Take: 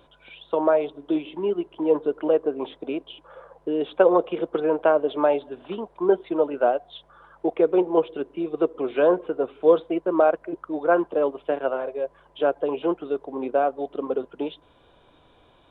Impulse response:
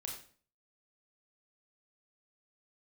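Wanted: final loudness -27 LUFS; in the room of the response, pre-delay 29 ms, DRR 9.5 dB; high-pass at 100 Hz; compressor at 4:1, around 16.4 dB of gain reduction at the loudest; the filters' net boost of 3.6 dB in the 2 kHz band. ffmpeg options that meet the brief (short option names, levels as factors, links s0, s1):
-filter_complex "[0:a]highpass=100,equalizer=f=2000:t=o:g=5.5,acompressor=threshold=0.0224:ratio=4,asplit=2[s0][s1];[1:a]atrim=start_sample=2205,adelay=29[s2];[s1][s2]afir=irnorm=-1:irlink=0,volume=0.422[s3];[s0][s3]amix=inputs=2:normalize=0,volume=2.82"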